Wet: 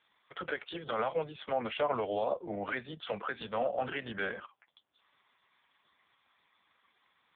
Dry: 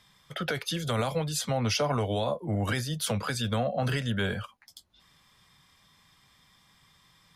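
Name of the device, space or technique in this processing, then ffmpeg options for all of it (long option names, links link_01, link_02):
telephone: -af "highpass=360,lowpass=3200" -ar 8000 -c:a libopencore_amrnb -b:a 4750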